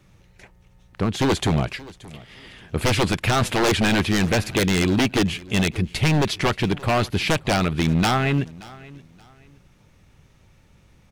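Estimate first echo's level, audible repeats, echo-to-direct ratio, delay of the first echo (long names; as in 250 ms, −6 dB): −21.0 dB, 2, −20.5 dB, 577 ms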